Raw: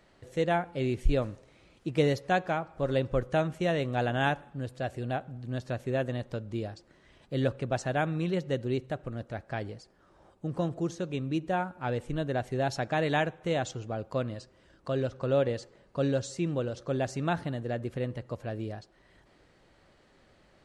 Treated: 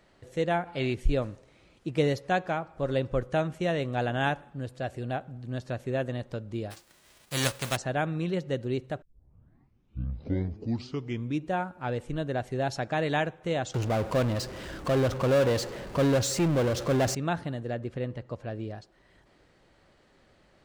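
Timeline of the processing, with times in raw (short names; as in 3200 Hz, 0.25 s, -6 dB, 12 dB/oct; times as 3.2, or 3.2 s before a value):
0.67–0.93 spectral gain 610–5100 Hz +7 dB
6.7–7.75 spectral whitening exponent 0.3
9.02 tape start 2.48 s
13.74–17.15 power-law curve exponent 0.5
17.74–18.75 air absorption 56 m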